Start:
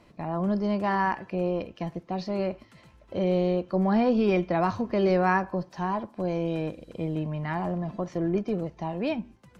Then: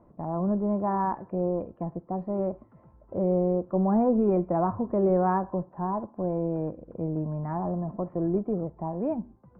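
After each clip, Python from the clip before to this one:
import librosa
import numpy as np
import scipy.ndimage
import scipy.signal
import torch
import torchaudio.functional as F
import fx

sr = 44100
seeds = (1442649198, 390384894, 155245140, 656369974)

y = scipy.signal.sosfilt(scipy.signal.butter(4, 1100.0, 'lowpass', fs=sr, output='sos'), x)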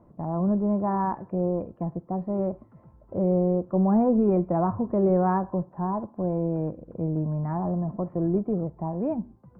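y = fx.peak_eq(x, sr, hz=130.0, db=4.5, octaves=1.7)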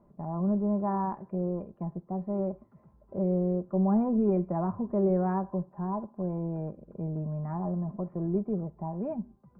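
y = x + 0.45 * np.pad(x, (int(5.0 * sr / 1000.0), 0))[:len(x)]
y = y * 10.0 ** (-6.5 / 20.0)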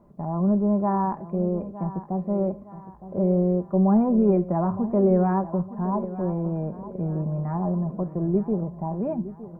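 y = fx.echo_feedback(x, sr, ms=913, feedback_pct=42, wet_db=-14.5)
y = y * 10.0 ** (6.0 / 20.0)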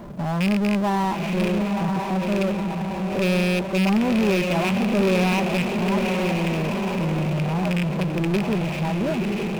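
y = fx.rattle_buzz(x, sr, strikes_db=-23.0, level_db=-15.0)
y = fx.echo_diffused(y, sr, ms=939, feedback_pct=42, wet_db=-6.5)
y = fx.power_curve(y, sr, exponent=0.5)
y = y * 10.0 ** (-6.0 / 20.0)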